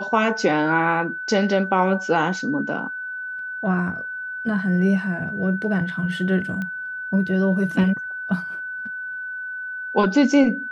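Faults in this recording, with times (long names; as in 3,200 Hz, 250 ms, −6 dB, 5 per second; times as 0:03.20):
whistle 1,500 Hz −28 dBFS
0:06.62: click −18 dBFS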